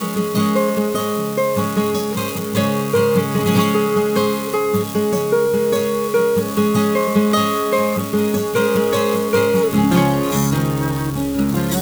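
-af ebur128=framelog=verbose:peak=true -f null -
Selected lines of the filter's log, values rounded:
Integrated loudness:
  I:         -17.6 LUFS
  Threshold: -27.6 LUFS
Loudness range:
  LRA:         1.3 LU
  Threshold: -37.4 LUFS
  LRA low:   -18.2 LUFS
  LRA high:  -16.9 LUFS
True peak:
  Peak:       -3.4 dBFS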